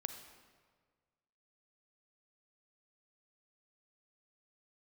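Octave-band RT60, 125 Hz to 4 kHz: 1.9 s, 1.6 s, 1.7 s, 1.5 s, 1.4 s, 1.1 s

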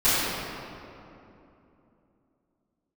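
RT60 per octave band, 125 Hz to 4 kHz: 3.5 s, 3.8 s, 3.1 s, 2.7 s, 2.1 s, 1.6 s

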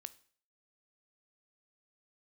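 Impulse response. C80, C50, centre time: 23.0 dB, 19.0 dB, 2 ms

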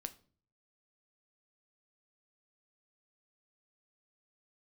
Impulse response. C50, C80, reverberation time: 17.5 dB, 22.0 dB, 0.45 s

